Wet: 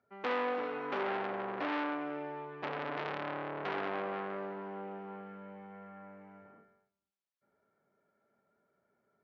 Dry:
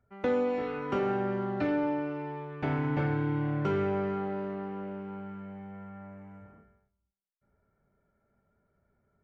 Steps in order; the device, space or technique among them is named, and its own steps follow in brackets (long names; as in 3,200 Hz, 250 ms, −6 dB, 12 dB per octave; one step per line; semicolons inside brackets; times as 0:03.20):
public-address speaker with an overloaded transformer (saturating transformer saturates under 2,200 Hz; band-pass filter 270–5,000 Hz)